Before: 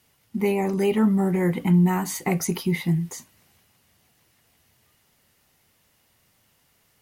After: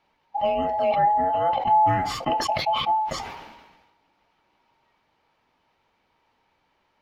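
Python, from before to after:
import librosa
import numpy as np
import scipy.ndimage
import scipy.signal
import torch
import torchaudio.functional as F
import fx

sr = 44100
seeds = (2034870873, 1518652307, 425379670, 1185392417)

y = fx.band_invert(x, sr, width_hz=1000)
y = fx.air_absorb(y, sr, metres=260.0)
y = fx.sustainer(y, sr, db_per_s=45.0)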